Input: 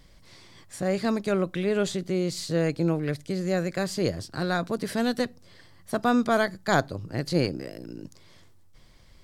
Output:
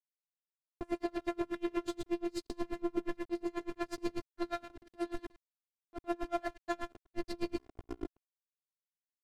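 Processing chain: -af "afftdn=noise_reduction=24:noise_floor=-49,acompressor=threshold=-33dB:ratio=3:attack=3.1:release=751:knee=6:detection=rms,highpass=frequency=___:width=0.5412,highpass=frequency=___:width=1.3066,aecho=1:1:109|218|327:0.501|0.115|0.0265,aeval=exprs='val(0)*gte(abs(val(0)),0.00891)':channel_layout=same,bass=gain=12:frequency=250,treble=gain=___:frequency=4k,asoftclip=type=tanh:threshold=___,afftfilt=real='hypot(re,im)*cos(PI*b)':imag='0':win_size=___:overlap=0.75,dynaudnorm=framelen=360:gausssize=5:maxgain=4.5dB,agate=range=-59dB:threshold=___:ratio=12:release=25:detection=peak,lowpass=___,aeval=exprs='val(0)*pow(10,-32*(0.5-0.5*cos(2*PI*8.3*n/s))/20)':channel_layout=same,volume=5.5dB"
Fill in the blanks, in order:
110, 110, -8, -27dB, 512, -46dB, 12k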